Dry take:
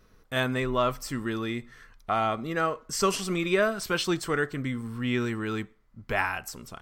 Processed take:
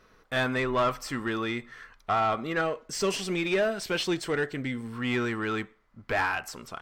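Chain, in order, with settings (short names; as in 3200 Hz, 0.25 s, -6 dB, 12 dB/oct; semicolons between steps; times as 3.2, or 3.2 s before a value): 2.61–4.93 bell 1200 Hz -11.5 dB 0.7 oct; hard clip -18 dBFS, distortion -22 dB; overdrive pedal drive 12 dB, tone 2600 Hz, clips at -18 dBFS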